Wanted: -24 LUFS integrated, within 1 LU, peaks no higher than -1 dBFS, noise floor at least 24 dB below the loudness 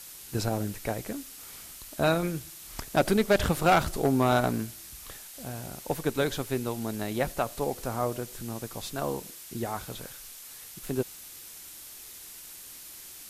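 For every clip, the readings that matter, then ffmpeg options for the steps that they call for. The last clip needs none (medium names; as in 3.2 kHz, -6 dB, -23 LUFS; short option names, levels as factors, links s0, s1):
noise floor -46 dBFS; noise floor target -54 dBFS; loudness -29.5 LUFS; peak level -12.5 dBFS; loudness target -24.0 LUFS
-> -af "afftdn=nr=8:nf=-46"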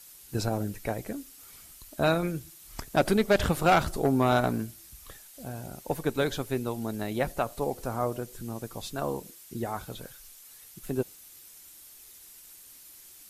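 noise floor -51 dBFS; noise floor target -54 dBFS
-> -af "afftdn=nr=6:nf=-51"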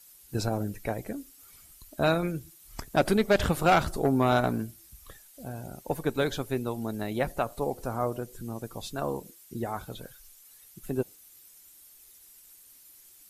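noise floor -55 dBFS; loudness -29.5 LUFS; peak level -12.5 dBFS; loudness target -24.0 LUFS
-> -af "volume=1.88"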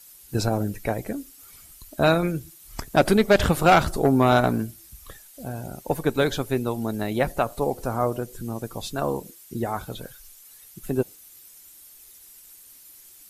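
loudness -24.0 LUFS; peak level -7.0 dBFS; noise floor -49 dBFS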